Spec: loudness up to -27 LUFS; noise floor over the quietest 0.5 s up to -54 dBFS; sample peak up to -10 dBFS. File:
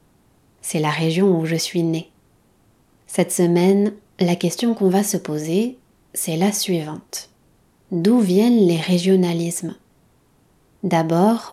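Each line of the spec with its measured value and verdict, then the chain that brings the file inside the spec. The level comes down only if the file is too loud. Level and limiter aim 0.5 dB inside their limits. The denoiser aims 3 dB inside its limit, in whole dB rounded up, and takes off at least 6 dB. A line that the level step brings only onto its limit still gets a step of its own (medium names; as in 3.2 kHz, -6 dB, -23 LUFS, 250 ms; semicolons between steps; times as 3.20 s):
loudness -19.0 LUFS: fail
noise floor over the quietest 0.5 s -58 dBFS: pass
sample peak -6.0 dBFS: fail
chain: trim -8.5 dB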